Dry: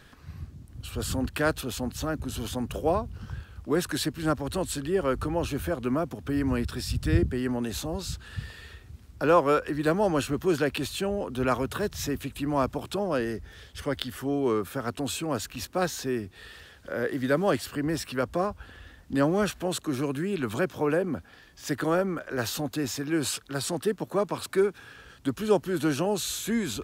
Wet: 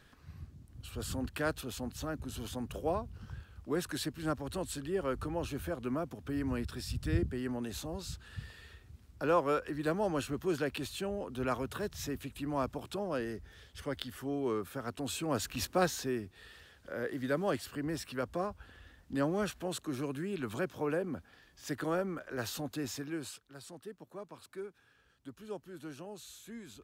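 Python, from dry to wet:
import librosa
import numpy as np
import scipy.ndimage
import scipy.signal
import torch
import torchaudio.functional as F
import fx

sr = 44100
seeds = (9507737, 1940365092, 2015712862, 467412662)

y = fx.gain(x, sr, db=fx.line((14.96, -8.0), (15.63, 0.0), (16.33, -8.0), (23.0, -8.0), (23.44, -19.5)))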